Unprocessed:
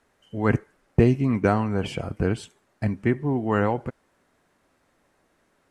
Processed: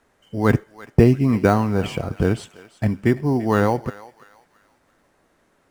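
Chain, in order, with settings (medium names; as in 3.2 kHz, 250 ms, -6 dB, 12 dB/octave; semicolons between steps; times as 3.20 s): in parallel at -12 dB: sample-rate reducer 5.2 kHz, jitter 0%; on the sum: thinning echo 338 ms, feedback 42%, high-pass 1.1 kHz, level -15 dB; trim +2.5 dB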